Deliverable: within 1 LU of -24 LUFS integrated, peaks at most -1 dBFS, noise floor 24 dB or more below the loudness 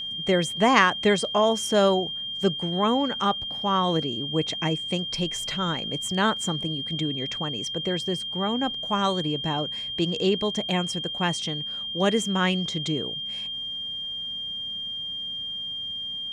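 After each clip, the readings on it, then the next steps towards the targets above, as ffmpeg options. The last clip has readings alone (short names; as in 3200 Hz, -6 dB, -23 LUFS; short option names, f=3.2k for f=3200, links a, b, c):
steady tone 3200 Hz; tone level -30 dBFS; loudness -25.5 LUFS; peak -4.0 dBFS; loudness target -24.0 LUFS
-> -af "bandreject=f=3.2k:w=30"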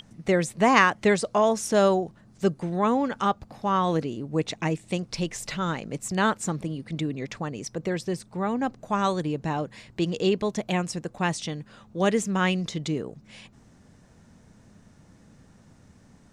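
steady tone none; loudness -26.0 LUFS; peak -4.0 dBFS; loudness target -24.0 LUFS
-> -af "volume=2dB"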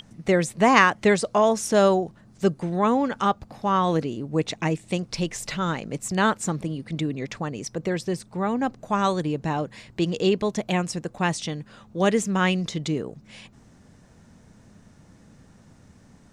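loudness -24.0 LUFS; peak -2.0 dBFS; noise floor -53 dBFS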